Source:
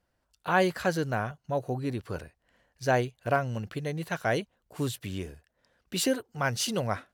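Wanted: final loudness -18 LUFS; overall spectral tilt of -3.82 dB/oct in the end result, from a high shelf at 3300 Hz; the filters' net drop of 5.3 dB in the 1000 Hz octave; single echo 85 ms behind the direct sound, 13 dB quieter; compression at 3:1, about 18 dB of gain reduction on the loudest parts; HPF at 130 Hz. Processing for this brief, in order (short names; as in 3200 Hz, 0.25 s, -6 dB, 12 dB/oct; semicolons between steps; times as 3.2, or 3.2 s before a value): HPF 130 Hz; bell 1000 Hz -9 dB; high shelf 3300 Hz +7 dB; compressor 3:1, threshold -47 dBFS; echo 85 ms -13 dB; gain +28 dB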